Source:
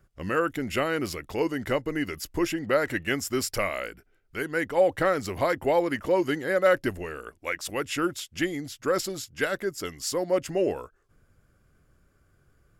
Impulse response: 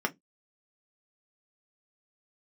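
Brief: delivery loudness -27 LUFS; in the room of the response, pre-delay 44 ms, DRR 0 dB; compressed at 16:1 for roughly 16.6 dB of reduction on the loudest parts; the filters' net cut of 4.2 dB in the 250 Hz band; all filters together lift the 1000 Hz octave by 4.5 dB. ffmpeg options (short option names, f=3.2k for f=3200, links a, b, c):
-filter_complex "[0:a]equalizer=f=250:t=o:g=-7,equalizer=f=1k:t=o:g=6.5,acompressor=threshold=-31dB:ratio=16,asplit=2[a][b];[1:a]atrim=start_sample=2205,adelay=44[c];[b][c]afir=irnorm=-1:irlink=0,volume=-8dB[d];[a][d]amix=inputs=2:normalize=0,volume=6.5dB"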